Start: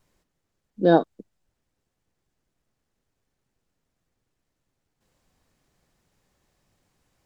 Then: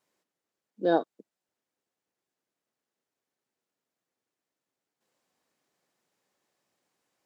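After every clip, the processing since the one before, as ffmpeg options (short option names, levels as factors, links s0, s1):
-af "highpass=290,volume=0.501"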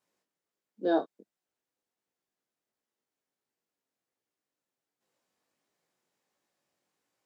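-af "flanger=delay=17:depth=5.6:speed=1.4"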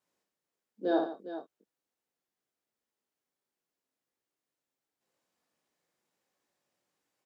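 -af "aecho=1:1:60|147|409:0.562|0.237|0.266,volume=0.75"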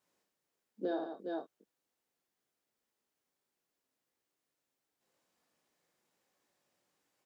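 -af "acompressor=threshold=0.0178:ratio=8,volume=1.33"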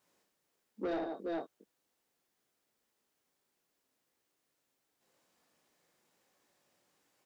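-af "asoftclip=type=tanh:threshold=0.0158,volume=1.78"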